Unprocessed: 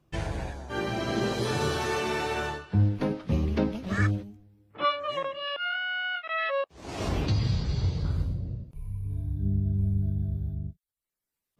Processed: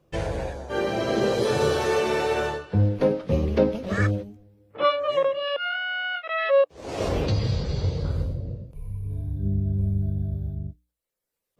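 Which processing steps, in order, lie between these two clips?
peaking EQ 510 Hz +11.5 dB 0.53 oct; hum notches 60/120/180/240/300 Hz; trim +2 dB

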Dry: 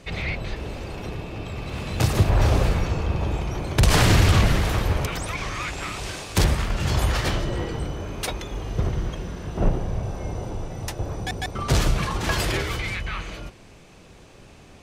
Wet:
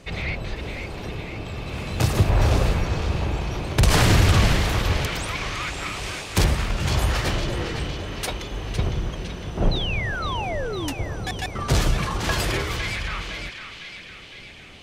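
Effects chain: painted sound fall, 9.71–10.93 s, 260–4200 Hz -30 dBFS; band-passed feedback delay 508 ms, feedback 68%, band-pass 2.9 kHz, level -5.5 dB

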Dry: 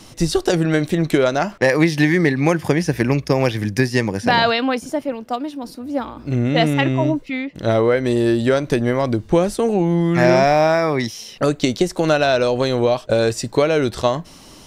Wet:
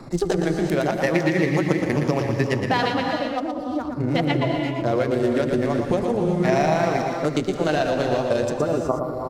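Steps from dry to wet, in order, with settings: local Wiener filter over 15 samples; spectral replace 13.54–14.14 s, 1.4–10 kHz; vibrato 8.4 Hz 6.1 cents; granular stretch 0.66×, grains 81 ms; on a send: delay 121 ms -6.5 dB; on the sum: gated-style reverb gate 410 ms rising, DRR 5.5 dB; speed mistake 24 fps film run at 25 fps; three bands compressed up and down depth 40%; trim -4.5 dB

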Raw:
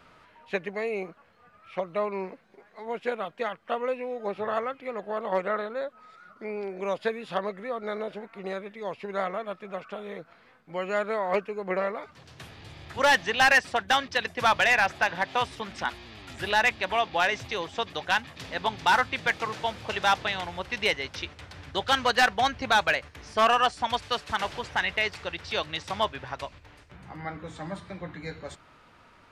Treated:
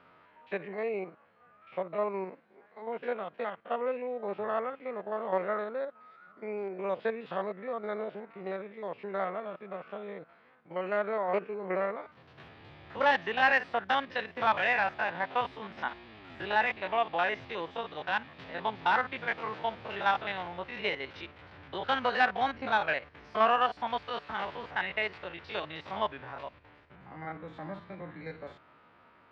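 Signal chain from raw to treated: spectrogram pixelated in time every 50 ms; high-pass 220 Hz 6 dB/octave; distance through air 340 m

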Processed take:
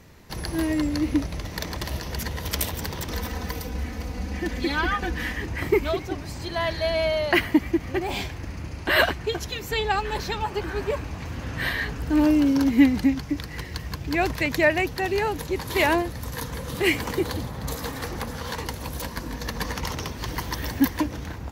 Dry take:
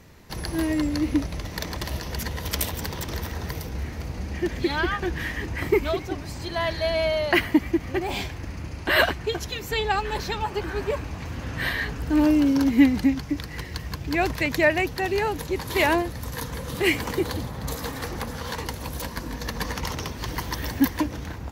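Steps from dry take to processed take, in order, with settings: 3.10–5.33 s: comb 4 ms, depth 67%

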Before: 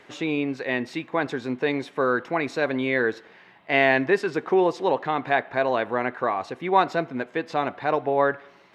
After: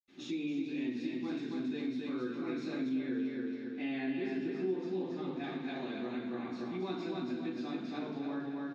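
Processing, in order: graphic EQ 125/250/500/1000/2000/4000 Hz -5/+6/-7/-8/-9/+5 dB; feedback delay 275 ms, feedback 39%, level -3 dB; reverberation RT60 0.70 s, pre-delay 76 ms; compression 2:1, threshold -42 dBFS, peak gain reduction 14 dB; 2.89–5.44 s: treble shelf 4 kHz -9 dB

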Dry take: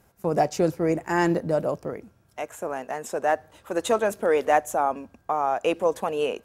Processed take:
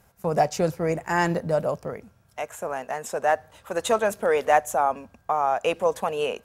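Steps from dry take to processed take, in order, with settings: peaking EQ 320 Hz -9 dB 0.69 oct; trim +2 dB

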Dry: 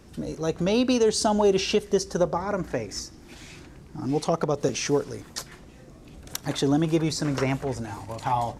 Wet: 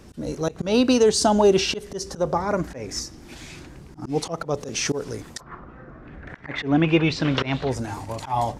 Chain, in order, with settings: slow attack 135 ms; 5.39–7.69 s: resonant low-pass 1.1 kHz -> 4 kHz, resonance Q 4.9; trim +4 dB

